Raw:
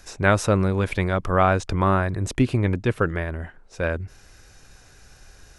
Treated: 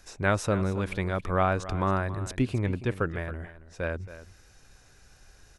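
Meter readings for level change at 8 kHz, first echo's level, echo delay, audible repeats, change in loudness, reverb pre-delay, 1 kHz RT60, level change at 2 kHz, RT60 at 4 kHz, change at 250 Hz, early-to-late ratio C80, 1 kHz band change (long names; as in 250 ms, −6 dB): −6.5 dB, −14.5 dB, 274 ms, 1, −6.5 dB, no reverb audible, no reverb audible, −6.5 dB, no reverb audible, −6.5 dB, no reverb audible, −6.5 dB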